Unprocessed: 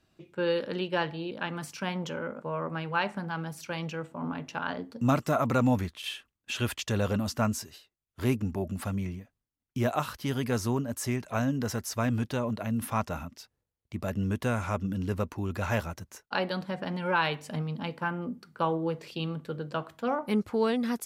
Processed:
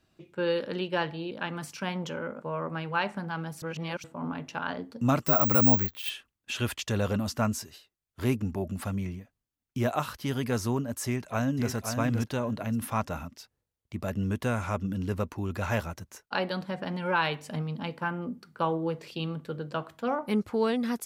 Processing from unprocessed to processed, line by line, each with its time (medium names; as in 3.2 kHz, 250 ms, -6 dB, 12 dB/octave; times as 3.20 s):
3.62–4.04 s: reverse
5.25–6.10 s: careless resampling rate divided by 2×, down filtered, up zero stuff
11.05–11.71 s: echo throw 520 ms, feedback 20%, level -6 dB